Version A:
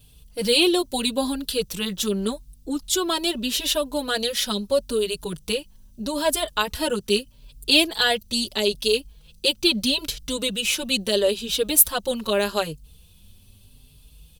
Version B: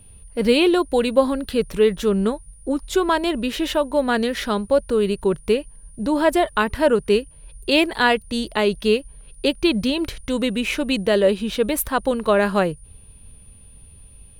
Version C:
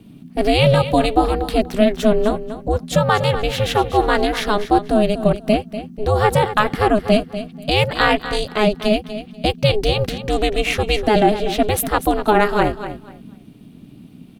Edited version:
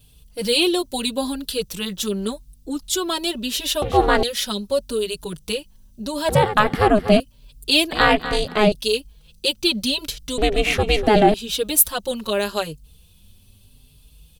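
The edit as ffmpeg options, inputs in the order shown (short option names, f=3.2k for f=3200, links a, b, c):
-filter_complex "[2:a]asplit=4[a][b][c][d];[0:a]asplit=5[e][f][g][h][i];[e]atrim=end=3.822[j];[a]atrim=start=3.818:end=4.232[k];[f]atrim=start=4.228:end=6.292[l];[b]atrim=start=6.288:end=7.202[m];[g]atrim=start=7.198:end=7.922[n];[c]atrim=start=7.918:end=8.722[o];[h]atrim=start=8.718:end=10.382[p];[d]atrim=start=10.378:end=11.342[q];[i]atrim=start=11.338[r];[j][k]acrossfade=d=0.004:c1=hsin:c2=hsin[s];[s][l]acrossfade=d=0.004:c1=hsin:c2=hsin[t];[t][m]acrossfade=d=0.004:c1=hsin:c2=hsin[u];[u][n]acrossfade=d=0.004:c1=hsin:c2=hsin[v];[v][o]acrossfade=d=0.004:c1=hsin:c2=hsin[w];[w][p]acrossfade=d=0.004:c1=hsin:c2=hsin[x];[x][q]acrossfade=d=0.004:c1=hsin:c2=hsin[y];[y][r]acrossfade=d=0.004:c1=hsin:c2=hsin"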